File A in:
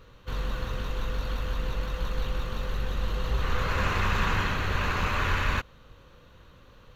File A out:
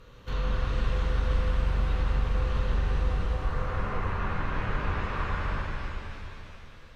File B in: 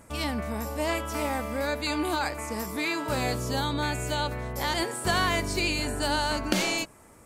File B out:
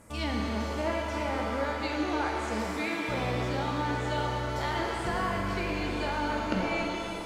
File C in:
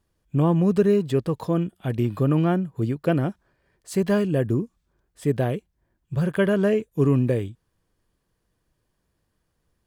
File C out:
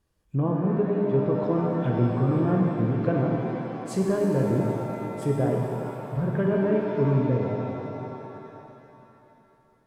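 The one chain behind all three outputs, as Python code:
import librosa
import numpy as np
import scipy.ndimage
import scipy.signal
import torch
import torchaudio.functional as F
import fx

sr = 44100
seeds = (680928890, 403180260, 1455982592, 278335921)

y = fx.env_lowpass_down(x, sr, base_hz=1400.0, full_db=-22.0)
y = fx.rider(y, sr, range_db=4, speed_s=0.5)
y = fx.rev_shimmer(y, sr, seeds[0], rt60_s=3.1, semitones=7, shimmer_db=-8, drr_db=-1.0)
y = y * 10.0 ** (-4.5 / 20.0)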